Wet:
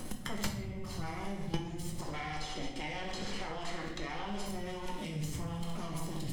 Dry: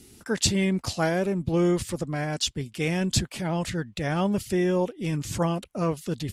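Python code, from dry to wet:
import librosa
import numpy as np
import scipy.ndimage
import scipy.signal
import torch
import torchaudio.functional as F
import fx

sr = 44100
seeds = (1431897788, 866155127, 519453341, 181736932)

y = fx.lower_of_two(x, sr, delay_ms=0.97)
y = fx.echo_feedback(y, sr, ms=65, feedback_pct=58, wet_db=-10.0)
y = fx.rotary(y, sr, hz=6.3)
y = fx.bandpass_edges(y, sr, low_hz=390.0, high_hz=6000.0, at=(2.0, 4.46))
y = fx.dmg_noise_colour(y, sr, seeds[0], colour='brown', level_db=-50.0)
y = fx.level_steps(y, sr, step_db=23)
y = fx.room_shoebox(y, sr, seeds[1], volume_m3=140.0, walls='mixed', distance_m=1.0)
y = fx.band_squash(y, sr, depth_pct=100)
y = F.gain(torch.from_numpy(y), 1.0).numpy()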